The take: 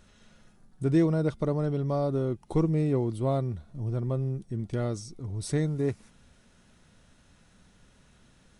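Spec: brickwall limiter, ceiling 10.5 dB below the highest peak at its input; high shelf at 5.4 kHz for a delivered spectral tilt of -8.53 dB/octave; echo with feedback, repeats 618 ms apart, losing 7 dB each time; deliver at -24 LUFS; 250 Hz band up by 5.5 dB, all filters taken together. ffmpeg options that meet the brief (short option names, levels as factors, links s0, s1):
-af "equalizer=f=250:t=o:g=8,highshelf=f=5400:g=6,alimiter=limit=0.1:level=0:latency=1,aecho=1:1:618|1236|1854|2472|3090:0.447|0.201|0.0905|0.0407|0.0183,volume=1.78"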